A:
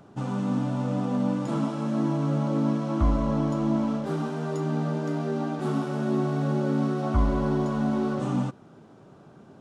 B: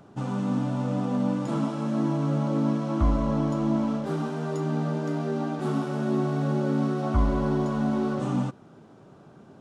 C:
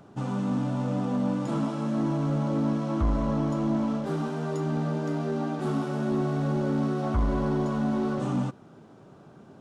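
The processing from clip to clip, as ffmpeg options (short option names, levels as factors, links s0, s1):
-af anull
-af "asoftclip=type=tanh:threshold=0.133"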